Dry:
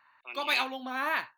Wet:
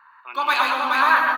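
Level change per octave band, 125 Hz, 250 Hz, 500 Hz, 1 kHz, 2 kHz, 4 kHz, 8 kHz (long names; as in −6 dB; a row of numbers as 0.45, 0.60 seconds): can't be measured, +5.0 dB, +7.0 dB, +15.0 dB, +12.0 dB, +5.5 dB, +6.0 dB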